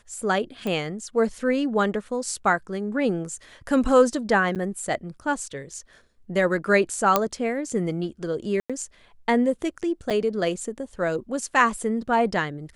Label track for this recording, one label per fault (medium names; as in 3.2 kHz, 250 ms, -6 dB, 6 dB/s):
0.670000	0.670000	pop -17 dBFS
4.550000	4.560000	dropout 8.3 ms
7.160000	7.160000	pop -4 dBFS
8.600000	8.700000	dropout 96 ms
10.100000	10.110000	dropout 6.9 ms